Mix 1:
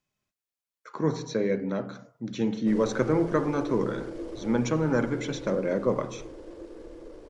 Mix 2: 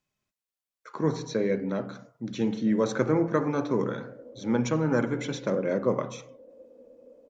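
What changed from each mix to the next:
background: add two resonant band-passes 360 Hz, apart 1.1 oct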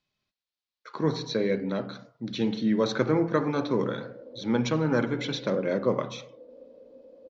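background: entry +0.65 s; master: add resonant low-pass 4.2 kHz, resonance Q 2.7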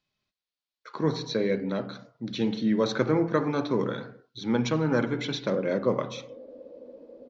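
background: entry +2.55 s

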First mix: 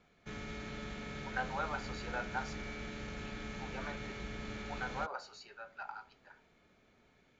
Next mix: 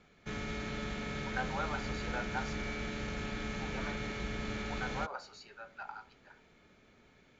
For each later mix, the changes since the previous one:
background +5.0 dB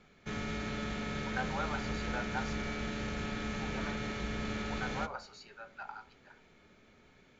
background: send on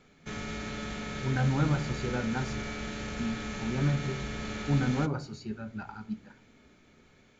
speech: remove inverse Chebyshev high-pass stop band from 230 Hz, stop band 50 dB; master: remove distance through air 66 m

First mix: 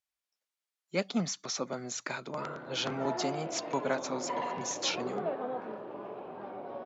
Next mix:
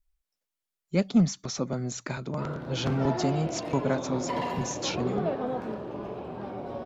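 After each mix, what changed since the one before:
background: remove tape spacing loss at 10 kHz 28 dB; master: remove frequency weighting A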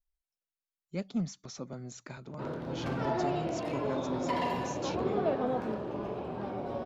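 speech -11.0 dB

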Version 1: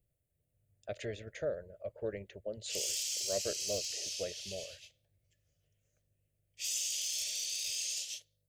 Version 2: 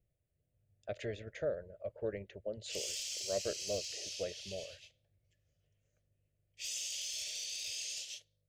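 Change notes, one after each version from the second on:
master: add treble shelf 7 kHz -11.5 dB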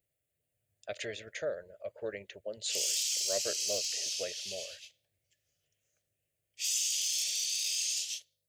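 speech +3.5 dB; master: add tilt EQ +3.5 dB/octave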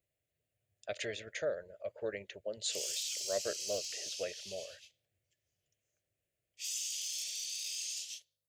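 background -7.0 dB

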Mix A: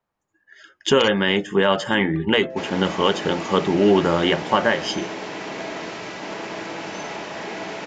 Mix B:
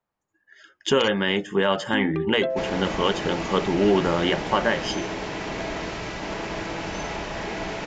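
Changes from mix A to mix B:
speech -3.5 dB; first sound +8.5 dB; second sound: remove high-pass 190 Hz 12 dB/octave

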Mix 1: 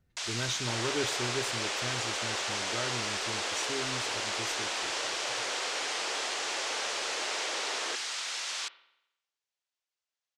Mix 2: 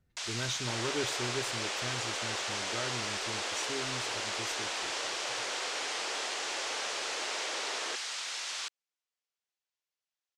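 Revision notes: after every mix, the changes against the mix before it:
reverb: off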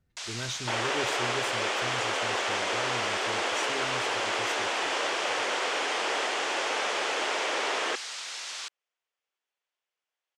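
second sound +9.5 dB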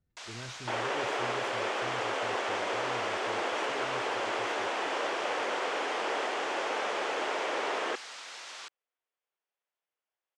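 speech -6.0 dB; master: add treble shelf 2.2 kHz -10.5 dB

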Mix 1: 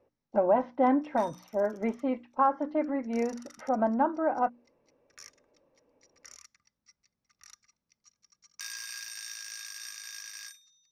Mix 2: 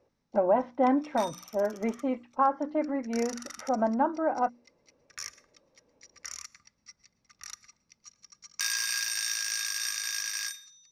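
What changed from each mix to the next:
background +8.5 dB; reverb: on, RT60 0.45 s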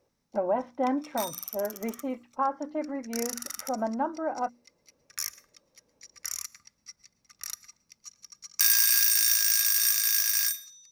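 speech -3.5 dB; master: remove distance through air 89 m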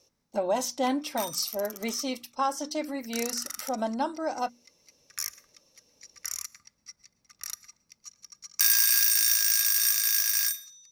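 speech: remove low-pass 1.8 kHz 24 dB/octave

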